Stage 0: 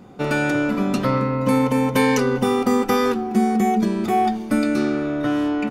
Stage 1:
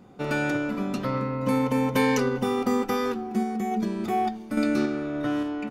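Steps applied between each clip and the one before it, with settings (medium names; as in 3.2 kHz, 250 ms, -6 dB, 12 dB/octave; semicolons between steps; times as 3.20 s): dynamic bell 9.1 kHz, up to -4 dB, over -51 dBFS, Q 2.7; random-step tremolo; trim -3.5 dB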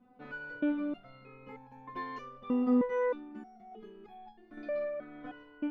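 distance through air 370 m; resonator arpeggio 3.2 Hz 250–830 Hz; trim +3 dB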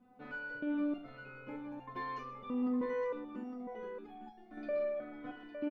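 peak limiter -29 dBFS, peak gain reduction 10.5 dB; multi-tap echo 44/120/859 ms -9.5/-13/-8.5 dB; trim -1.5 dB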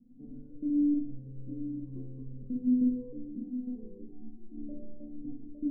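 inverse Chebyshev low-pass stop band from 1.8 kHz, stop band 80 dB; reverberation RT60 0.30 s, pre-delay 23 ms, DRR 2 dB; trim +6 dB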